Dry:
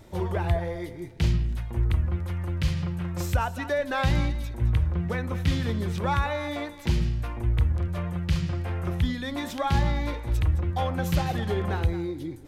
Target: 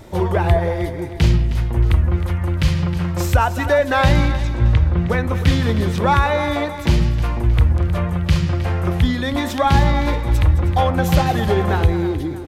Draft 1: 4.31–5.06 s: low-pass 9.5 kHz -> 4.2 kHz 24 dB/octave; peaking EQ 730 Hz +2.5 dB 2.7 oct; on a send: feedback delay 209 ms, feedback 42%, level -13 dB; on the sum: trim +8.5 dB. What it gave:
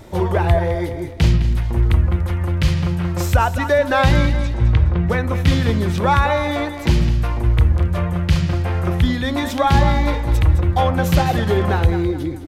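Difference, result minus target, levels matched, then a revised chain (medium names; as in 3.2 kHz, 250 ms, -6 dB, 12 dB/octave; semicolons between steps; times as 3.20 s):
echo 104 ms early
4.31–5.06 s: low-pass 9.5 kHz -> 4.2 kHz 24 dB/octave; peaking EQ 730 Hz +2.5 dB 2.7 oct; on a send: feedback delay 313 ms, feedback 42%, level -13 dB; on the sum: trim +8.5 dB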